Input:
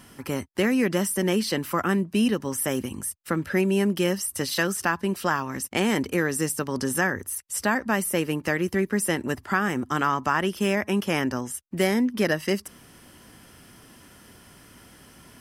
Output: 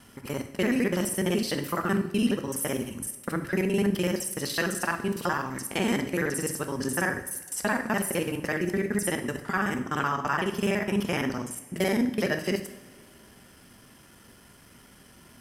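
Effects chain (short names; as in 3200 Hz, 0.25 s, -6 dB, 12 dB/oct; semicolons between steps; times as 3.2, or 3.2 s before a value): local time reversal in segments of 42 ms; two-slope reverb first 0.68 s, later 2.9 s, from -18 dB, DRR 6.5 dB; gain -3.5 dB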